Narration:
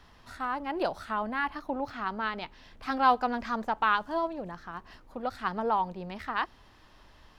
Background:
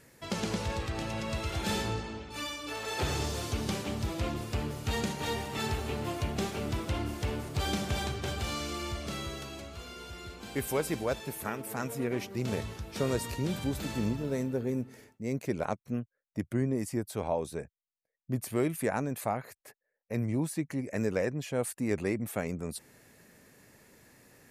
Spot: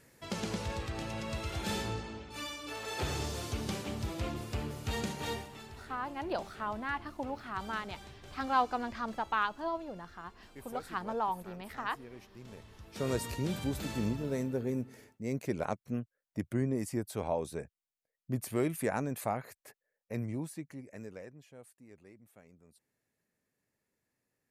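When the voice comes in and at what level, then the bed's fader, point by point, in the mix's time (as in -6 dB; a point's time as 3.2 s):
5.50 s, -5.5 dB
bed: 5.33 s -3.5 dB
5.65 s -17.5 dB
12.65 s -17.5 dB
13.1 s -2 dB
19.97 s -2 dB
21.89 s -25.5 dB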